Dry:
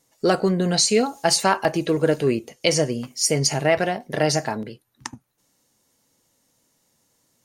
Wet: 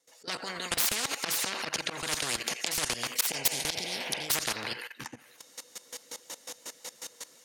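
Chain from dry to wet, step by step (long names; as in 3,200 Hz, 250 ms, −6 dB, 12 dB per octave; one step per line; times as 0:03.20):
phase distortion by the signal itself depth 0.073 ms
rotating-speaker cabinet horn 5.5 Hz
volume swells 296 ms
healed spectral selection 0:03.39–0:04.27, 480–3,100 Hz before
meter weighting curve A
feedback echo with a band-pass in the loop 84 ms, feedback 62%, band-pass 2,200 Hz, level −16 dB
automatic gain control gain up to 15.5 dB
low-shelf EQ 270 Hz −6 dB
hollow resonant body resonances 490/3,700 Hz, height 10 dB, ringing for 100 ms
output level in coarse steps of 18 dB
every bin compressed towards the loudest bin 10 to 1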